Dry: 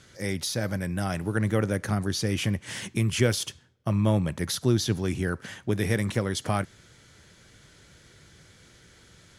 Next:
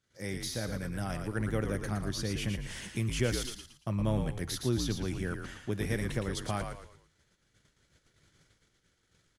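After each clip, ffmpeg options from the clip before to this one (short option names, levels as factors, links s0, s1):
-filter_complex "[0:a]agate=range=0.1:threshold=0.00251:ratio=16:detection=peak,asplit=5[s0][s1][s2][s3][s4];[s1]adelay=114,afreqshift=-63,volume=0.501[s5];[s2]adelay=228,afreqshift=-126,volume=0.176[s6];[s3]adelay=342,afreqshift=-189,volume=0.0617[s7];[s4]adelay=456,afreqshift=-252,volume=0.0214[s8];[s0][s5][s6][s7][s8]amix=inputs=5:normalize=0,volume=0.422"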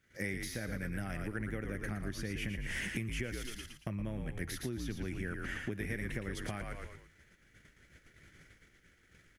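-af "acompressor=threshold=0.00891:ratio=10,equalizer=f=125:t=o:w=1:g=-5,equalizer=f=500:t=o:w=1:g=-3,equalizer=f=1000:t=o:w=1:g=-9,equalizer=f=2000:t=o:w=1:g=8,equalizer=f=4000:t=o:w=1:g=-10,equalizer=f=8000:t=o:w=1:g=-7,volume=2.82"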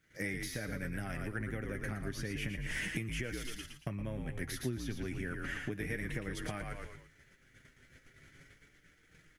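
-af "flanger=delay=6.4:depth=1.4:regen=49:speed=0.32:shape=sinusoidal,volume=1.68"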